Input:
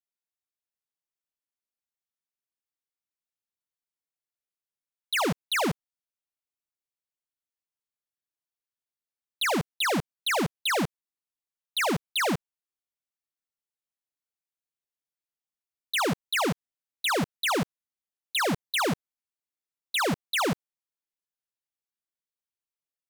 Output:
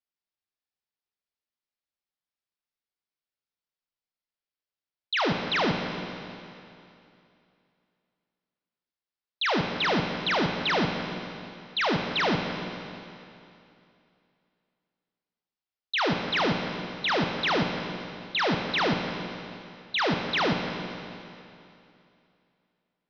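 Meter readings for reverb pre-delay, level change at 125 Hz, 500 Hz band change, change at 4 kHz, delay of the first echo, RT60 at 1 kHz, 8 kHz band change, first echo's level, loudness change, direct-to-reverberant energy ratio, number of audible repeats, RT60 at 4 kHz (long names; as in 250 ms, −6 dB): 17 ms, +2.0 dB, +2.0 dB, +1.5 dB, no echo audible, 2.7 s, −13.0 dB, no echo audible, +0.5 dB, 3.0 dB, no echo audible, 2.6 s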